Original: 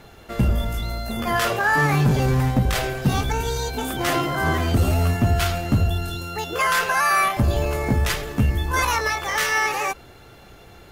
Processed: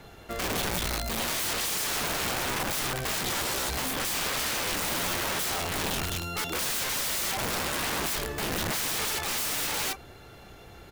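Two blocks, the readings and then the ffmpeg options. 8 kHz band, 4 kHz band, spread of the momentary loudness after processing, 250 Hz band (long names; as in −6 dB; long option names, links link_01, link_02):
+2.5 dB, 0.0 dB, 3 LU, −12.0 dB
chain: -filter_complex "[0:a]acrossover=split=290[link_01][link_02];[link_01]acompressor=threshold=-19dB:ratio=6[link_03];[link_03][link_02]amix=inputs=2:normalize=0,asplit=2[link_04][link_05];[link_05]adelay=30,volume=-13.5dB[link_06];[link_04][link_06]amix=inputs=2:normalize=0,aeval=exprs='(mod(13.3*val(0)+1,2)-1)/13.3':channel_layout=same,volume=-2.5dB"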